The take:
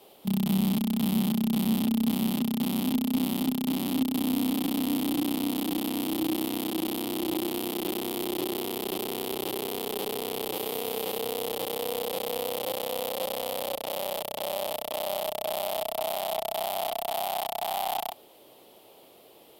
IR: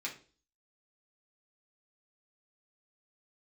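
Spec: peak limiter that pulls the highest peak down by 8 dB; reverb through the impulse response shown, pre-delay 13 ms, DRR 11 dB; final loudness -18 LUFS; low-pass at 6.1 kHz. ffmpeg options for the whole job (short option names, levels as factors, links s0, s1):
-filter_complex "[0:a]lowpass=6100,alimiter=limit=0.0708:level=0:latency=1,asplit=2[s0][s1];[1:a]atrim=start_sample=2205,adelay=13[s2];[s1][s2]afir=irnorm=-1:irlink=0,volume=0.237[s3];[s0][s3]amix=inputs=2:normalize=0,volume=5.31"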